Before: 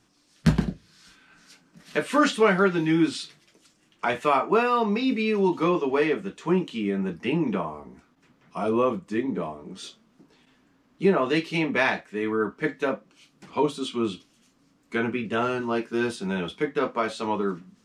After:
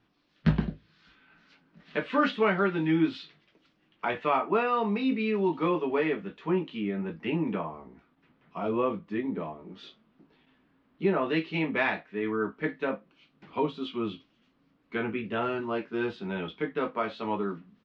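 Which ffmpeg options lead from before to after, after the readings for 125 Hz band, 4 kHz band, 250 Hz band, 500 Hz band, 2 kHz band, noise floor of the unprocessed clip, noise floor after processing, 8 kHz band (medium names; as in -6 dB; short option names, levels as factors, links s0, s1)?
-4.0 dB, -6.5 dB, -4.0 dB, -4.5 dB, -4.5 dB, -64 dBFS, -69 dBFS, under -25 dB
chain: -filter_complex "[0:a]lowpass=f=3700:w=0.5412,lowpass=f=3700:w=1.3066,asplit=2[s0][s1];[s1]adelay=19,volume=0.282[s2];[s0][s2]amix=inputs=2:normalize=0,volume=0.596"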